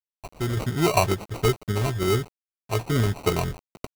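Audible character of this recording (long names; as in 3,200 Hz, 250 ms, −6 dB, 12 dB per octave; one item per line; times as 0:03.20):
a quantiser's noise floor 8 bits, dither none
sample-and-hold tremolo
aliases and images of a low sample rate 1,700 Hz, jitter 0%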